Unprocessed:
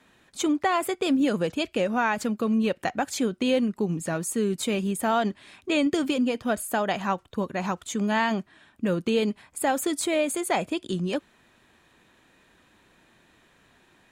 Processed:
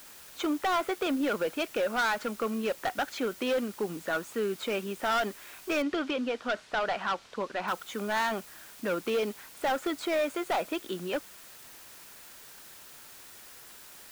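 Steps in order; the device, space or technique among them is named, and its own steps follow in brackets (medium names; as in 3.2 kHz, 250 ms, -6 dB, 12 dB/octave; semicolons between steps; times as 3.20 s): drive-through speaker (band-pass 390–3100 Hz; peaking EQ 1.4 kHz +8 dB 0.29 oct; hard clipper -24 dBFS, distortion -8 dB; white noise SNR 18 dB); 5.82–7.68 s: Chebyshev low-pass 4.6 kHz, order 2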